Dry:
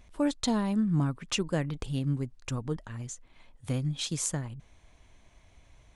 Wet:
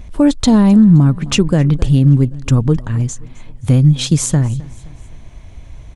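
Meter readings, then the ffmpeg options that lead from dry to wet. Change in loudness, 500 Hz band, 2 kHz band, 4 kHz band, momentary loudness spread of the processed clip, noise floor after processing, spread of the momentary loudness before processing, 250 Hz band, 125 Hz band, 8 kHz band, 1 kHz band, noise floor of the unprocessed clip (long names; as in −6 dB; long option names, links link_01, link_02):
+18.5 dB, +14.5 dB, +11.5 dB, +12.5 dB, 11 LU, −37 dBFS, 14 LU, +19.0 dB, +20.5 dB, +12.0 dB, +12.0 dB, −61 dBFS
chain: -filter_complex "[0:a]lowshelf=frequency=360:gain=11.5,asplit=2[link_01][link_02];[link_02]aecho=0:1:261|522|783:0.0708|0.0347|0.017[link_03];[link_01][link_03]amix=inputs=2:normalize=0,alimiter=level_in=14dB:limit=-1dB:release=50:level=0:latency=1,volume=-1.5dB"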